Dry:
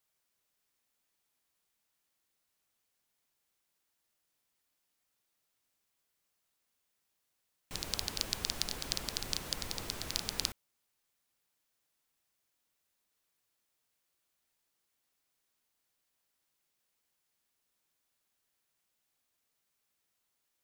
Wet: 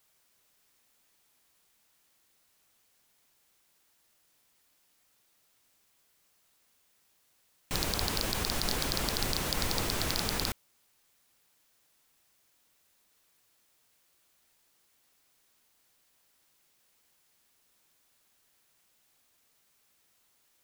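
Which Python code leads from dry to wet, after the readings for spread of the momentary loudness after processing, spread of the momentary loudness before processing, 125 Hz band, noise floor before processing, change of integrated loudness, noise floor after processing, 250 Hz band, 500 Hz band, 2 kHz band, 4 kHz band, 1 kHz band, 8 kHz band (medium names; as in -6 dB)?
3 LU, 5 LU, +11.0 dB, -82 dBFS, +5.5 dB, -70 dBFS, +11.0 dB, +11.0 dB, +8.5 dB, +3.5 dB, +10.5 dB, +4.0 dB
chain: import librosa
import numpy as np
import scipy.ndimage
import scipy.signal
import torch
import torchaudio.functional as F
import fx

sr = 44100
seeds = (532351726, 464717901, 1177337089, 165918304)

p1 = fx.over_compress(x, sr, threshold_db=-38.0, ratio=-1.0)
p2 = x + F.gain(torch.from_numpy(p1), -1.0).numpy()
p3 = np.clip(p2, -10.0 ** (-20.5 / 20.0), 10.0 ** (-20.5 / 20.0))
y = F.gain(torch.from_numpy(p3), 5.0).numpy()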